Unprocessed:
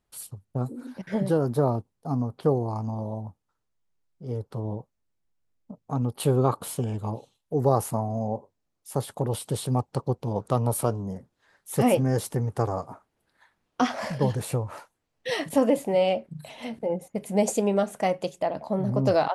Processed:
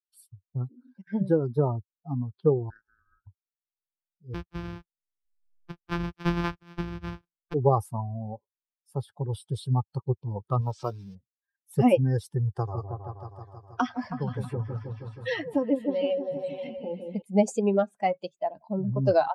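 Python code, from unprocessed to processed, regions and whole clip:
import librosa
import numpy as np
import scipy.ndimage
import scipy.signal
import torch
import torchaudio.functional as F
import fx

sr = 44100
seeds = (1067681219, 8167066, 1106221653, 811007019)

y = fx.chain(x, sr, fx.highpass(hz=1100.0, slope=12),
    fx.ring_mod(carrier_hz=630.0), at=(2.7, 3.27))
y = fx.chain(y, sr, fx.sample_sort(block=256),
    fx.bass_treble(bass_db=-1, treble_db=-4),
    fx.band_squash(depth_pct=70), at=(4.34, 7.54))
y = fx.chain(y, sr, fx.crossing_spikes(level_db=-22.5),
    fx.low_shelf(hz=130.0, db=-6.0),
    fx.resample_bad(factor=3, down='filtered', up='hold'), at=(10.61, 11.15))
y = fx.chain(y, sr, fx.tremolo_shape(shape='saw_down', hz=1.1, depth_pct=40),
    fx.echo_opening(ms=159, hz=750, octaves=1, feedback_pct=70, wet_db=-3),
    fx.band_squash(depth_pct=70), at=(12.55, 17.22))
y = fx.bin_expand(y, sr, power=2.0)
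y = scipy.signal.sosfilt(scipy.signal.butter(2, 9300.0, 'lowpass', fs=sr, output='sos'), y)
y = fx.high_shelf(y, sr, hz=4100.0, db=-10.5)
y = y * 10.0 ** (4.0 / 20.0)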